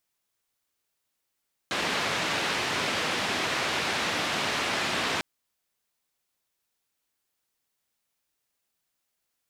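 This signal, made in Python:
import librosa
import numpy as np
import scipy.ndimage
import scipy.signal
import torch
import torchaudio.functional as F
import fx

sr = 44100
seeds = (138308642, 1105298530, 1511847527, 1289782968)

y = fx.band_noise(sr, seeds[0], length_s=3.5, low_hz=120.0, high_hz=3100.0, level_db=-28.5)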